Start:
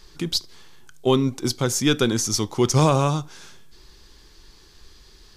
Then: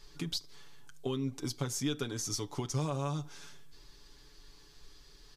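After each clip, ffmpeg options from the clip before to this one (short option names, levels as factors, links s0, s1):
-af "acompressor=threshold=0.0562:ratio=6,aecho=1:1:7:0.65,volume=0.376"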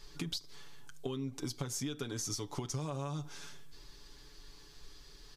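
-af "acompressor=threshold=0.0158:ratio=10,volume=1.26"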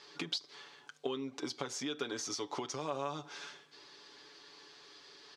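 -af "highpass=380,lowpass=4400,volume=1.88"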